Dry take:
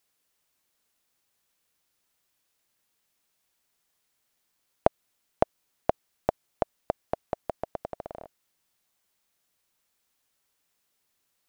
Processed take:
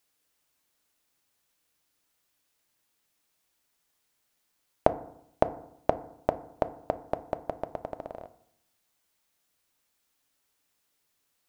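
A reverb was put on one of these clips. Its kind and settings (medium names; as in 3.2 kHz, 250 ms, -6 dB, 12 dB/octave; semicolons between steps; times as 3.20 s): FDN reverb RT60 0.73 s, low-frequency decay 1.2×, high-frequency decay 0.4×, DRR 11 dB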